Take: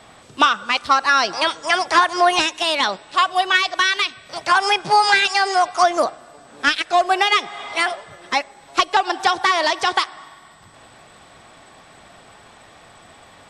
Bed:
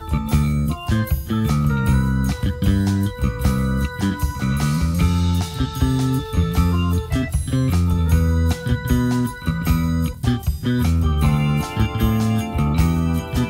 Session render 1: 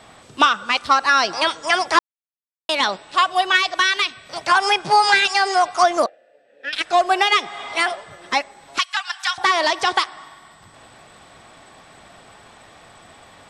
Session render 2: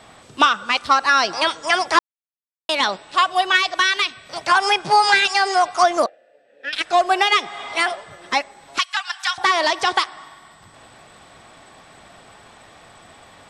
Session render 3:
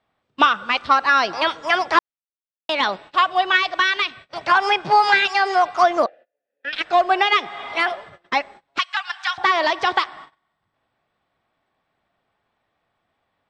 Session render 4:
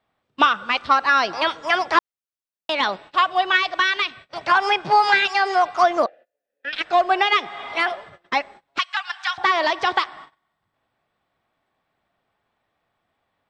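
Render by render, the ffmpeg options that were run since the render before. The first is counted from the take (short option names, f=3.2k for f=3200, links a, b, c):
-filter_complex "[0:a]asettb=1/sr,asplit=3[a][b][c];[a]atrim=end=6.064[d];[b]atrim=start=6.06:end=6.73,asetpts=PTS-STARTPTS,afade=t=in:d=0.004:c=qsin,afade=t=out:st=0.666:d=0.004:c=qsin,asplit=3[e][f][g];[e]bandpass=f=530:t=q:w=8,volume=0dB[h];[f]bandpass=f=1.84k:t=q:w=8,volume=-6dB[i];[g]bandpass=f=2.48k:t=q:w=8,volume=-9dB[j];[h][i][j]amix=inputs=3:normalize=0[k];[c]atrim=start=6.726[l];[d][k]acrossfade=d=0.004:c1=hsin:c2=qsin[m];[m][l]acrossfade=d=0.004:c1=qsin:c2=hsin,asettb=1/sr,asplit=3[n][o][p];[n]atrim=end=8.784[q];[o]atrim=start=8.78:end=9.38,asetpts=PTS-STARTPTS,afade=t=in:d=0.004:c=qsin,afade=t=out:st=0.596:d=0.004:c=qsin,highpass=f=1.3k:w=0.5412,highpass=f=1.3k:w=1.3066[r];[p]atrim=start=9.376[s];[q][r]acrossfade=d=0.004:c1=hsin:c2=qsin[t];[t][s]acrossfade=d=0.004:c1=qsin:c2=hsin,asplit=3[u][v][w];[u]atrim=end=1.99,asetpts=PTS-STARTPTS,afade=t=out:st=1.986:d=0.004:c=hsin[x];[v]atrim=start=1.99:end=2.69,asetpts=PTS-STARTPTS,volume=0[y];[w]atrim=start=2.69,asetpts=PTS-STARTPTS,afade=t=in:d=0.004:c=hsin[z];[x][y][z]concat=n=3:v=0:a=1"
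-af anull
-af "lowpass=3.5k,agate=range=-26dB:threshold=-39dB:ratio=16:detection=peak"
-af "volume=-1dB"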